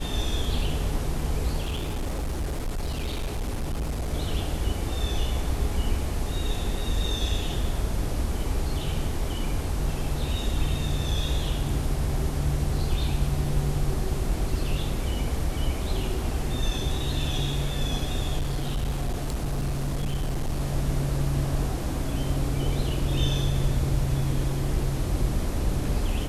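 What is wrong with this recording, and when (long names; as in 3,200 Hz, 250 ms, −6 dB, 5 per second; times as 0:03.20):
0:01.64–0:04.14: clipping −25 dBFS
0:18.39–0:20.61: clipping −23 dBFS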